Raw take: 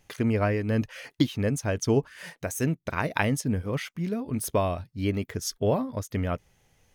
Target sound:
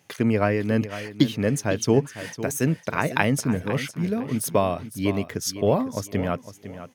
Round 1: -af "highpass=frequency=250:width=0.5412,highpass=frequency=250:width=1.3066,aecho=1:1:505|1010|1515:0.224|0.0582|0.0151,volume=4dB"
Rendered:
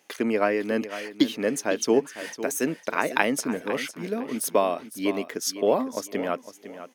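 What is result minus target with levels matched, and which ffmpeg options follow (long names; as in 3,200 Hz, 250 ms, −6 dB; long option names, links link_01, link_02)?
125 Hz band −15.0 dB
-af "highpass=frequency=110:width=0.5412,highpass=frequency=110:width=1.3066,aecho=1:1:505|1010|1515:0.224|0.0582|0.0151,volume=4dB"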